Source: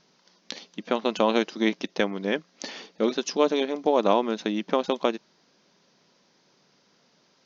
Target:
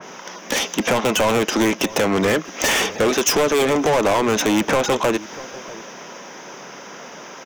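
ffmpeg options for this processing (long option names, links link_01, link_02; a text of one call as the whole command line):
ffmpeg -i in.wav -filter_complex "[0:a]equalizer=frequency=4300:width_type=o:width=0.36:gain=-14,acrossover=split=120|770[link_01][link_02][link_03];[link_03]alimiter=limit=-21.5dB:level=0:latency=1:release=14[link_04];[link_01][link_02][link_04]amix=inputs=3:normalize=0,acompressor=threshold=-30dB:ratio=6,asplit=2[link_05][link_06];[link_06]highpass=frequency=720:poles=1,volume=31dB,asoftclip=type=tanh:threshold=-17.5dB[link_07];[link_05][link_07]amix=inputs=2:normalize=0,lowpass=frequency=1700:poles=1,volume=-6dB,asplit=2[link_08][link_09];[link_09]adelay=641.4,volume=-18dB,highshelf=frequency=4000:gain=-14.4[link_10];[link_08][link_10]amix=inputs=2:normalize=0,aexciter=amount=3.5:drive=4.8:freq=6100,adynamicequalizer=threshold=0.00708:dfrequency=2400:dqfactor=0.7:tfrequency=2400:tqfactor=0.7:attack=5:release=100:ratio=0.375:range=2.5:mode=boostabove:tftype=highshelf,volume=8.5dB" out.wav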